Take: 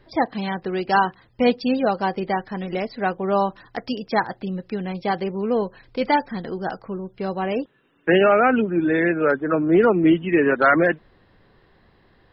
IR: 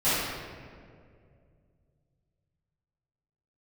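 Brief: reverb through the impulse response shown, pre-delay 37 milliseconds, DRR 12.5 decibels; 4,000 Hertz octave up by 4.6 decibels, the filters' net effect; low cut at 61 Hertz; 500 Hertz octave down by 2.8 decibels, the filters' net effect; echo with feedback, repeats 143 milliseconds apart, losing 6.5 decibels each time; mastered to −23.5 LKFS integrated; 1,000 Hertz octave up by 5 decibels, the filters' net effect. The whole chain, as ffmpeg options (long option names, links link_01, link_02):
-filter_complex "[0:a]highpass=61,equalizer=frequency=500:width_type=o:gain=-6,equalizer=frequency=1000:width_type=o:gain=8.5,equalizer=frequency=4000:width_type=o:gain=6,aecho=1:1:143|286|429|572|715|858:0.473|0.222|0.105|0.0491|0.0231|0.0109,asplit=2[link_01][link_02];[1:a]atrim=start_sample=2205,adelay=37[link_03];[link_02][link_03]afir=irnorm=-1:irlink=0,volume=-27.5dB[link_04];[link_01][link_04]amix=inputs=2:normalize=0,volume=-4.5dB"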